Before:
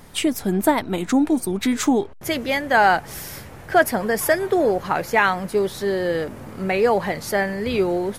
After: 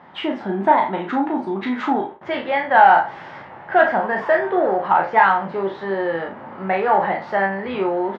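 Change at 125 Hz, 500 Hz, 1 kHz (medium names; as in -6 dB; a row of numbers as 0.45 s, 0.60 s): -4.5 dB, 0.0 dB, +6.0 dB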